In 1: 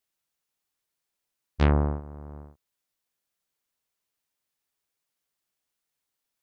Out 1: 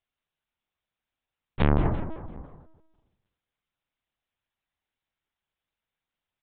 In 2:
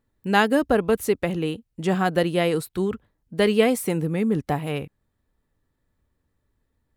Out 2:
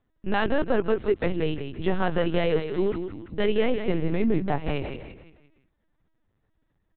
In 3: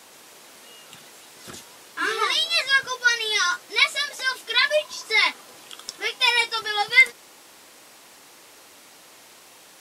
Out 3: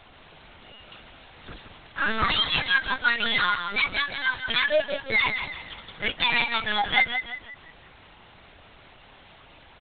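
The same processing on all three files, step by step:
brickwall limiter −12.5 dBFS
on a send: echo with shifted repeats 170 ms, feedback 41%, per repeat −35 Hz, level −8 dB
on the sum: linear-prediction vocoder at 8 kHz pitch kept

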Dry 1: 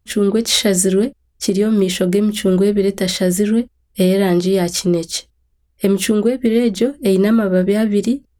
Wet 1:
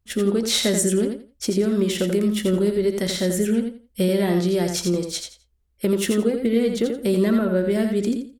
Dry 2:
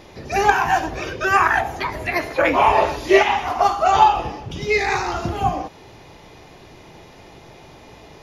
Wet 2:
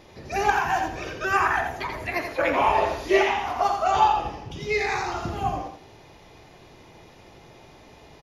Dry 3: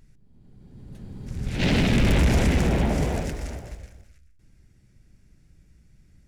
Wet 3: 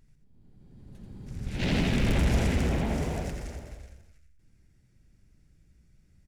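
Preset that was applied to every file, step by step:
repeating echo 85 ms, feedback 21%, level −6 dB
level −6.5 dB

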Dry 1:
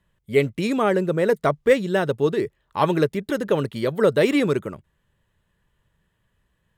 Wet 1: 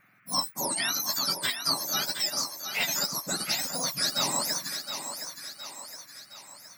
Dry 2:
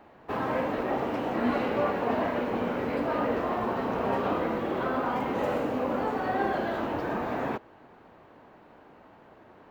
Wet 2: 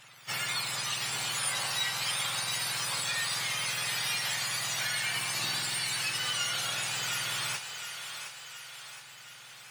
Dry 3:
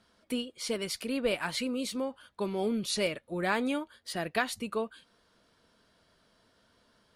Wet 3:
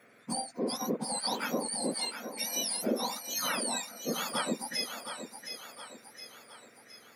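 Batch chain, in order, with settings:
frequency axis turned over on the octave scale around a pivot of 1,500 Hz
downward compressor 2 to 1, threshold −38 dBFS
noise in a band 1,200–2,400 Hz −70 dBFS
on a send: feedback echo with a high-pass in the loop 716 ms, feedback 52%, high-pass 310 Hz, level −8 dB
on the sum: level +5.5 dB

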